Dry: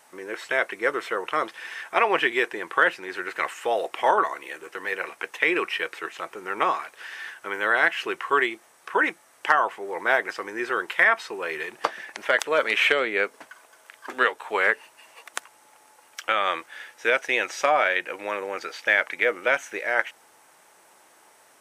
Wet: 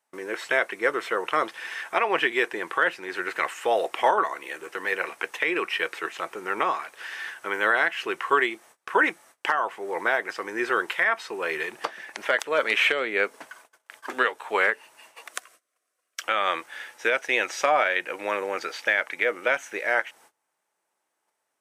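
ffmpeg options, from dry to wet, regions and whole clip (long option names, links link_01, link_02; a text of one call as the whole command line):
ffmpeg -i in.wav -filter_complex "[0:a]asettb=1/sr,asplit=3[link_01][link_02][link_03];[link_01]atrim=end=15.314[link_04];[link_02]atrim=start=15.31:end=16.23,asetpts=PTS-STARTPTS,afade=type=in:duration=0.004:curve=qsin,afade=type=out:start_time=0.916:duration=0.004:curve=qsin,asuperstop=centerf=870:order=12:qfactor=3.8,bass=frequency=250:gain=-7,treble=frequency=4000:gain=2[link_05];[link_03]atrim=start=16.226[link_06];[link_04][link_05]acrossfade=duration=0.004:curve1=hsin:curve2=qsin[link_07];[link_07][link_06]acrossfade=duration=0.004:curve1=qsin:curve2=hsin,highpass=87,agate=range=-25dB:threshold=-51dB:ratio=16:detection=peak,alimiter=limit=-11.5dB:level=0:latency=1:release=442,volume=2dB" out.wav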